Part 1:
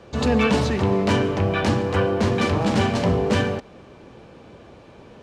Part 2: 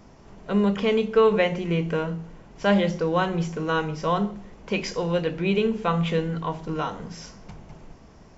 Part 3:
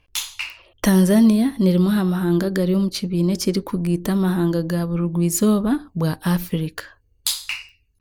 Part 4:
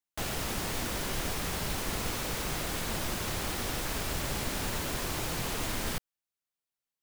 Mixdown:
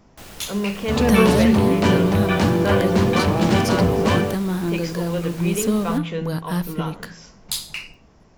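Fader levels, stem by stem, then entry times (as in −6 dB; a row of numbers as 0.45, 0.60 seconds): +1.5, −3.0, −4.0, −6.5 decibels; 0.75, 0.00, 0.25, 0.00 seconds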